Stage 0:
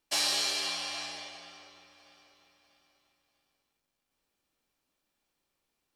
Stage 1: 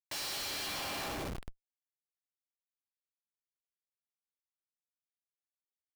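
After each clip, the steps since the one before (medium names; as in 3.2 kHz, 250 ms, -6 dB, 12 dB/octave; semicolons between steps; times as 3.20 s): Schmitt trigger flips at -39.5 dBFS; trim +1 dB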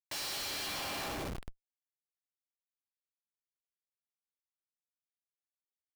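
no audible change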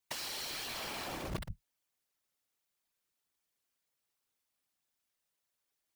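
compressor with a negative ratio -43 dBFS, ratio -0.5; whisper effect; trim +4.5 dB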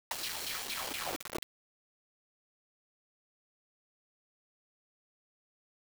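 LFO high-pass saw down 4.3 Hz 250–3400 Hz; word length cut 6-bit, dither none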